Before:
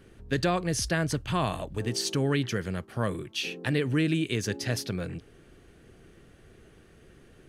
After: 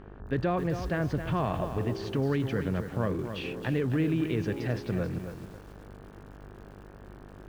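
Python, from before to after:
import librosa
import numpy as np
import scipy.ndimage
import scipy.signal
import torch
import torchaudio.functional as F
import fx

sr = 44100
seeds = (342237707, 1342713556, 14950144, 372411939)

p1 = fx.over_compress(x, sr, threshold_db=-32.0, ratio=-1.0)
p2 = x + (p1 * 10.0 ** (-3.0 / 20.0))
p3 = fx.spacing_loss(p2, sr, db_at_10k=44)
p4 = fx.dmg_buzz(p3, sr, base_hz=50.0, harmonics=35, level_db=-47.0, tilt_db=-5, odd_only=False)
p5 = fx.low_shelf(p4, sr, hz=280.0, db=-3.5)
y = fx.echo_crushed(p5, sr, ms=269, feedback_pct=35, bits=8, wet_db=-8.5)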